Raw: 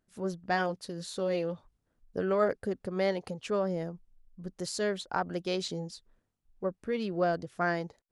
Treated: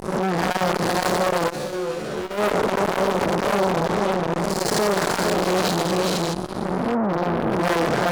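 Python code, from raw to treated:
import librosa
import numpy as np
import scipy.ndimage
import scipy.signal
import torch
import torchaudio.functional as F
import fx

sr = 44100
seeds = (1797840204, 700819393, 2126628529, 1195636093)

y = fx.spec_blur(x, sr, span_ms=318.0)
y = fx.low_shelf(y, sr, hz=82.0, db=-9.5, at=(5.02, 5.89))
y = fx.echo_feedback(y, sr, ms=460, feedback_pct=39, wet_db=-4.5)
y = fx.spec_box(y, sr, start_s=6.33, length_s=1.3, low_hz=380.0, high_hz=8800.0, gain_db=-12)
y = fx.fuzz(y, sr, gain_db=45.0, gate_db=-51.0)
y = fx.comb_fb(y, sr, f0_hz=73.0, decay_s=0.52, harmonics='all', damping=0.0, mix_pct=90, at=(1.49, 2.37), fade=0.02)
y = fx.peak_eq(y, sr, hz=7700.0, db=-9.0, octaves=1.1, at=(7.06, 7.52))
y = fx.transformer_sat(y, sr, knee_hz=670.0)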